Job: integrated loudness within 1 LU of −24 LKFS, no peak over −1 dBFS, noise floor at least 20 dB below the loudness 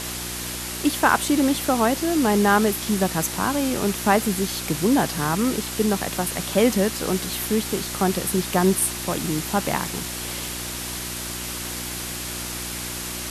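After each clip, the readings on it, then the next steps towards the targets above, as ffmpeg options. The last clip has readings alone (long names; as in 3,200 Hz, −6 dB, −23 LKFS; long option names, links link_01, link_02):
mains hum 60 Hz; hum harmonics up to 360 Hz; level of the hum −35 dBFS; background noise floor −31 dBFS; target noise floor −43 dBFS; integrated loudness −23.0 LKFS; sample peak −4.0 dBFS; target loudness −24.0 LKFS
→ -af "bandreject=frequency=60:width_type=h:width=4,bandreject=frequency=120:width_type=h:width=4,bandreject=frequency=180:width_type=h:width=4,bandreject=frequency=240:width_type=h:width=4,bandreject=frequency=300:width_type=h:width=4,bandreject=frequency=360:width_type=h:width=4"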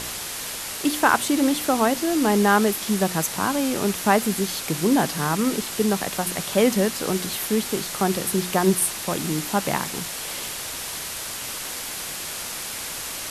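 mains hum none found; background noise floor −32 dBFS; target noise floor −43 dBFS
→ -af "afftdn=noise_reduction=11:noise_floor=-32"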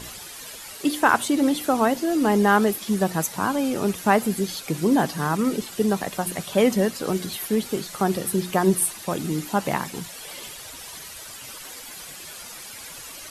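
background noise floor −40 dBFS; target noise floor −43 dBFS
→ -af "afftdn=noise_reduction=6:noise_floor=-40"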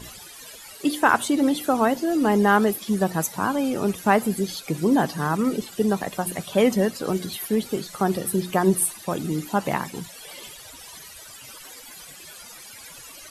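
background noise floor −43 dBFS; integrated loudness −23.0 LKFS; sample peak −4.5 dBFS; target loudness −24.0 LKFS
→ -af "volume=-1dB"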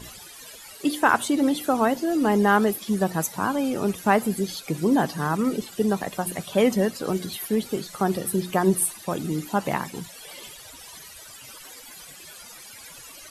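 integrated loudness −24.0 LKFS; sample peak −5.5 dBFS; background noise floor −44 dBFS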